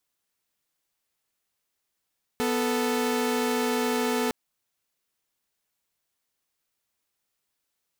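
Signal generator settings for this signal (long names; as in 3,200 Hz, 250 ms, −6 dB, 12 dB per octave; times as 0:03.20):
held notes B3/A4 saw, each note −24 dBFS 1.91 s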